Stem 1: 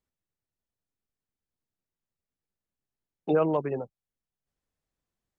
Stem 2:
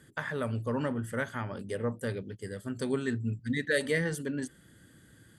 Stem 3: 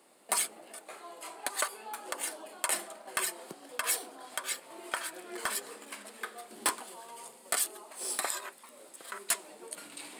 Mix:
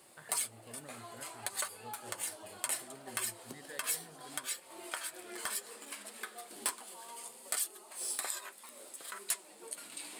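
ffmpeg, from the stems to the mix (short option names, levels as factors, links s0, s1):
-filter_complex "[1:a]volume=0.119[s0];[2:a]highshelf=f=2800:g=7,flanger=delay=5.3:depth=4.3:regen=-44:speed=0.64:shape=sinusoidal,volume=1.41[s1];[s0][s1]amix=inputs=2:normalize=0,acompressor=threshold=0.00398:ratio=1.5"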